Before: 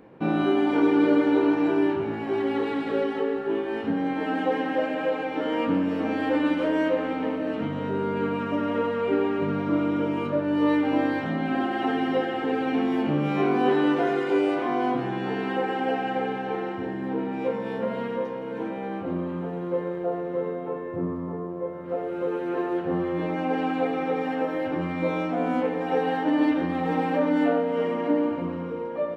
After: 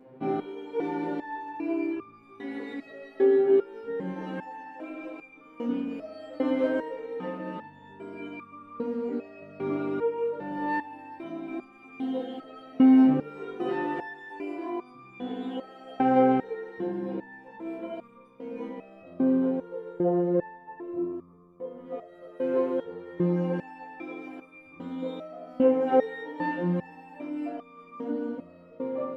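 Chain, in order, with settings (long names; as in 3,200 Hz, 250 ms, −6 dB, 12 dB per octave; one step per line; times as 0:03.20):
parametric band 300 Hz +6.5 dB 2.6 octaves
in parallel at −3 dB: speech leveller 2 s
on the sum: step-sequenced resonator 2.5 Hz 130–1,200 Hz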